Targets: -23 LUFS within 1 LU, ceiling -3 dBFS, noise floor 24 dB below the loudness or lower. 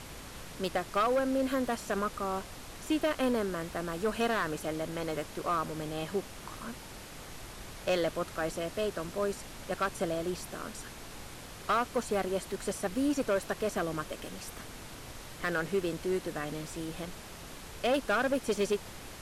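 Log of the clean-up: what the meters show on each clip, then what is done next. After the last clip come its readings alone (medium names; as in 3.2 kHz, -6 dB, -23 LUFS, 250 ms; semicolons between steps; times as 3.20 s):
clipped samples 1.0%; clipping level -23.0 dBFS; noise floor -47 dBFS; noise floor target -57 dBFS; loudness -33.0 LUFS; peak level -23.0 dBFS; loudness target -23.0 LUFS
-> clip repair -23 dBFS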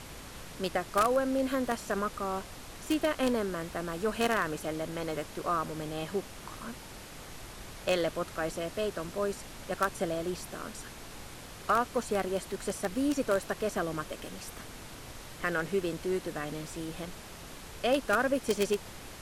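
clipped samples 0.0%; noise floor -47 dBFS; noise floor target -57 dBFS
-> noise print and reduce 10 dB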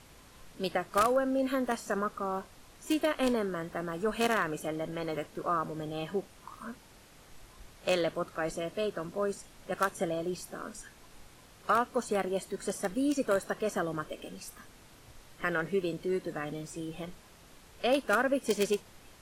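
noise floor -56 dBFS; noise floor target -57 dBFS
-> noise print and reduce 6 dB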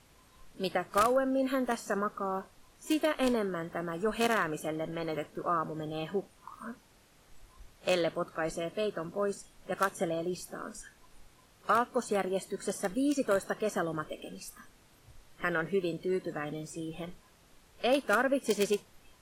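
noise floor -62 dBFS; loudness -32.5 LUFS; peak level -14.0 dBFS; loudness target -23.0 LUFS
-> trim +9.5 dB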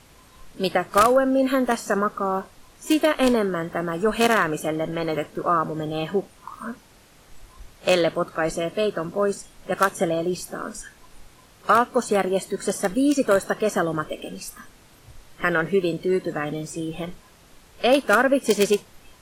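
loudness -23.0 LUFS; peak level -4.5 dBFS; noise floor -52 dBFS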